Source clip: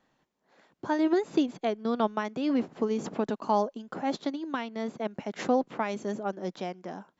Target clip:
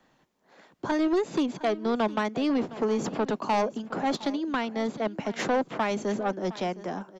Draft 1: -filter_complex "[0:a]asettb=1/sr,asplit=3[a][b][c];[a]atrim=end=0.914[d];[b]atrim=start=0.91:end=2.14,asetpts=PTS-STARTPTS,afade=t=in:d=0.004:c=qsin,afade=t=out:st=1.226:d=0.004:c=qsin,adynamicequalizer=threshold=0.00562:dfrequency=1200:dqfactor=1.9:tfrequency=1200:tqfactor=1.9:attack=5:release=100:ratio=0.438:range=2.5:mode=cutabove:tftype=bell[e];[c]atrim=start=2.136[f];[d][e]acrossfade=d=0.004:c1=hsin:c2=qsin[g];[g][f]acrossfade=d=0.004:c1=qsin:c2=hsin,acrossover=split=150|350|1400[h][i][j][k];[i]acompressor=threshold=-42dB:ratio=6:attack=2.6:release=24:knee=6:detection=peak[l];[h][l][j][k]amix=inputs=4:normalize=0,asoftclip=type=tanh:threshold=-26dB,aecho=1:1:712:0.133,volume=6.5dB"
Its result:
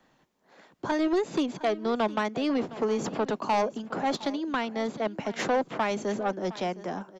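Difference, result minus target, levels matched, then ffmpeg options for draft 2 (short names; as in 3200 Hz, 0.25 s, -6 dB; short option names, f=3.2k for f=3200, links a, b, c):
compressor: peak gain reduction +6 dB
-filter_complex "[0:a]asettb=1/sr,asplit=3[a][b][c];[a]atrim=end=0.914[d];[b]atrim=start=0.91:end=2.14,asetpts=PTS-STARTPTS,afade=t=in:d=0.004:c=qsin,afade=t=out:st=1.226:d=0.004:c=qsin,adynamicequalizer=threshold=0.00562:dfrequency=1200:dqfactor=1.9:tfrequency=1200:tqfactor=1.9:attack=5:release=100:ratio=0.438:range=2.5:mode=cutabove:tftype=bell[e];[c]atrim=start=2.136[f];[d][e]acrossfade=d=0.004:c1=hsin:c2=qsin[g];[g][f]acrossfade=d=0.004:c1=qsin:c2=hsin,acrossover=split=150|350|1400[h][i][j][k];[i]acompressor=threshold=-34.5dB:ratio=6:attack=2.6:release=24:knee=6:detection=peak[l];[h][l][j][k]amix=inputs=4:normalize=0,asoftclip=type=tanh:threshold=-26dB,aecho=1:1:712:0.133,volume=6.5dB"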